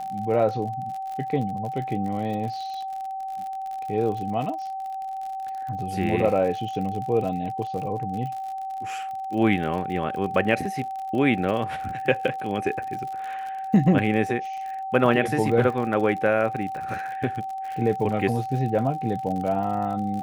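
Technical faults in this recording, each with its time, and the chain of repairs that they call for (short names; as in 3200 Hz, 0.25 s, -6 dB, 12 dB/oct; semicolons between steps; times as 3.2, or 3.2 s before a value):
crackle 56/s -32 dBFS
tone 770 Hz -29 dBFS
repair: de-click; notch 770 Hz, Q 30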